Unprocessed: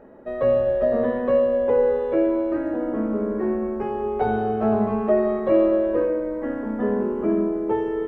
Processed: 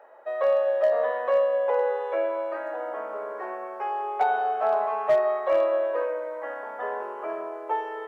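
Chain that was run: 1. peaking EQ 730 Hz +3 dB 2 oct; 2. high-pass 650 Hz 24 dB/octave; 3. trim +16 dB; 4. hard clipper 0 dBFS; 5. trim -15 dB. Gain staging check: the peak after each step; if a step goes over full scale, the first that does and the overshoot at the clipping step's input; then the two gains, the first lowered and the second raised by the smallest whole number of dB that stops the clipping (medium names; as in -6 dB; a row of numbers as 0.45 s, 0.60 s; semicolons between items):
-5.0 dBFS, -12.5 dBFS, +3.5 dBFS, 0.0 dBFS, -15.0 dBFS; step 3, 3.5 dB; step 3 +12 dB, step 5 -11 dB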